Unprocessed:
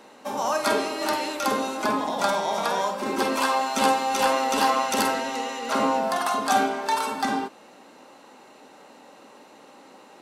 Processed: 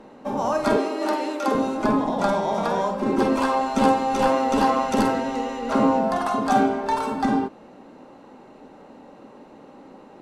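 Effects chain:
dynamic equaliser 7,900 Hz, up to +4 dB, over −43 dBFS, Q 0.83
0:00.76–0:01.55: high-pass filter 260 Hz 24 dB per octave
spectral tilt −4 dB per octave

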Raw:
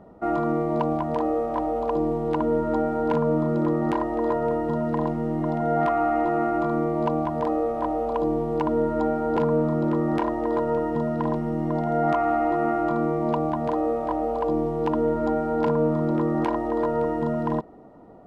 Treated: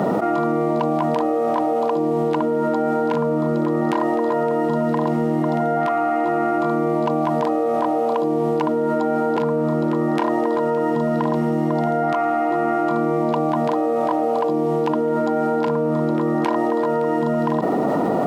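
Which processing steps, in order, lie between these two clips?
high-pass filter 140 Hz 24 dB per octave
high-shelf EQ 2,200 Hz +7.5 dB
envelope flattener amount 100%

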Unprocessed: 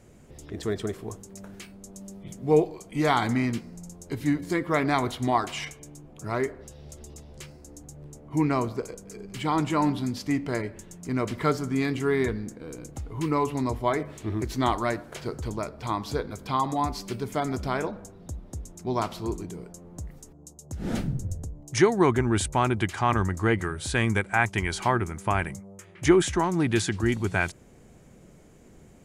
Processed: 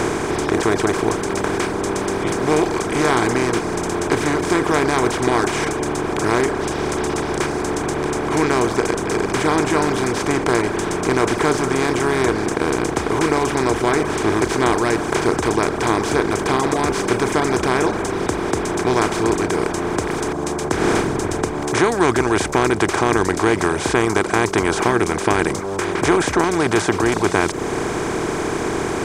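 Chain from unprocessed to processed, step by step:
compressor on every frequency bin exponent 0.2
reverb reduction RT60 0.89 s
level −1.5 dB

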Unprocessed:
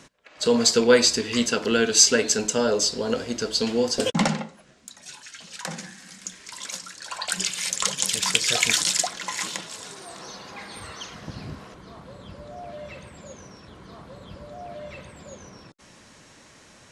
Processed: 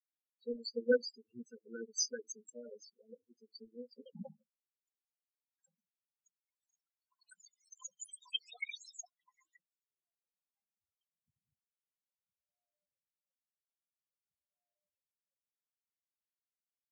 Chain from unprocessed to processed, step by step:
power curve on the samples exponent 3
spectral peaks only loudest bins 4
level +5 dB

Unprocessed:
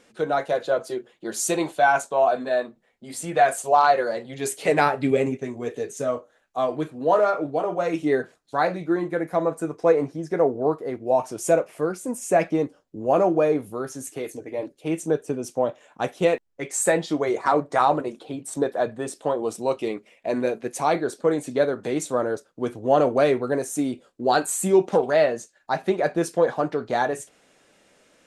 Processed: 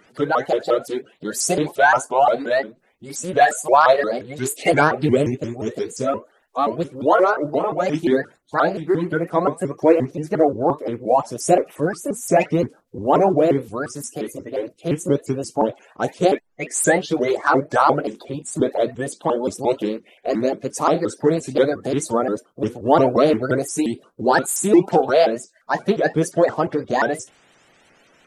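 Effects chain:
spectral magnitudes quantised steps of 30 dB
pitch modulation by a square or saw wave saw up 5.7 Hz, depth 250 cents
level +4.5 dB

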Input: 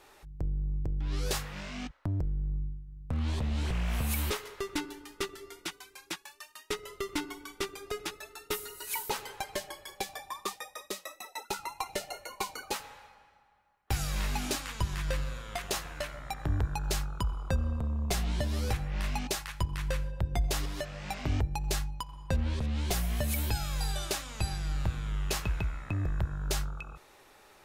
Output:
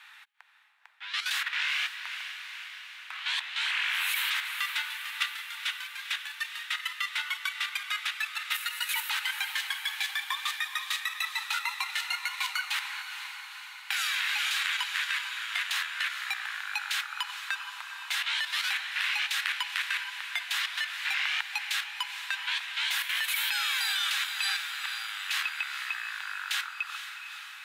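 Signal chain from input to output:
Butterworth high-pass 910 Hz 48 dB per octave
flat-topped bell 2,400 Hz +12 dB
in parallel at +1.5 dB: brickwall limiter −22 dBFS, peak gain reduction 9 dB
on the sum: output level in coarse steps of 10 dB
on a send: feedback delay with all-pass diffusion 464 ms, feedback 66%, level −9 dB
on the sum: one half of a high-frequency compander decoder only

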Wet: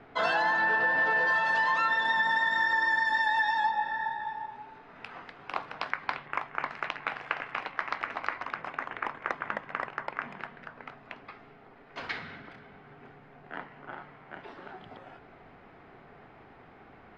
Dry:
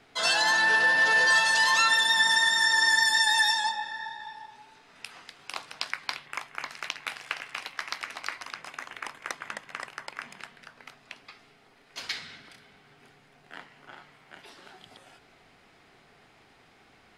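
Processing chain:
low-pass filter 1,500 Hz 12 dB per octave
downward compressor, threshold −31 dBFS, peak gain reduction 8.5 dB
level +7.5 dB

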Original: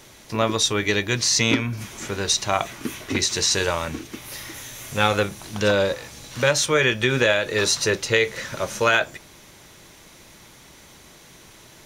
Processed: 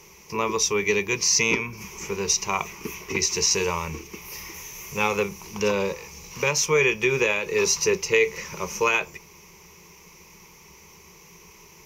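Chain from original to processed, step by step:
EQ curve with evenly spaced ripples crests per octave 0.79, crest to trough 15 dB
level −5 dB

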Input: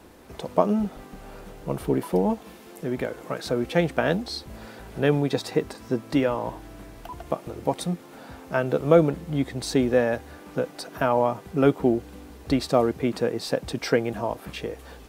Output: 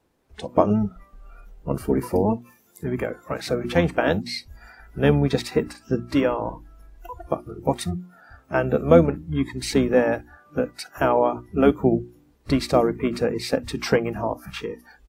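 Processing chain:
noise reduction from a noise print of the clip's start 21 dB
pitch-shifted copies added −12 semitones −7 dB
mains-hum notches 60/120/180/240/300/360 Hz
level +2 dB

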